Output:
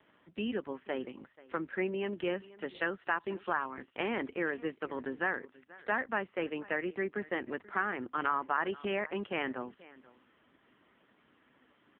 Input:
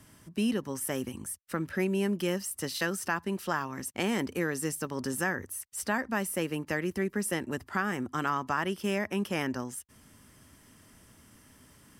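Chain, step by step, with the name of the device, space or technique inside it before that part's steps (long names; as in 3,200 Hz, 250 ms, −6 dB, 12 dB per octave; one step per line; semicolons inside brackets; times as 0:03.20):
satellite phone (band-pass filter 320–3,300 Hz; single-tap delay 484 ms −20.5 dB; AMR narrowband 5.9 kbit/s 8,000 Hz)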